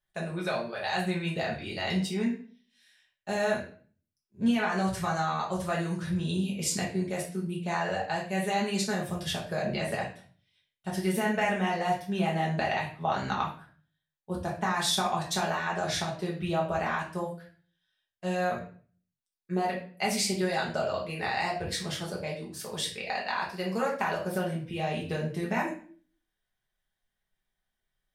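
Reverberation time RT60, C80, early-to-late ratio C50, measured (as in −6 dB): 0.45 s, 11.5 dB, 6.5 dB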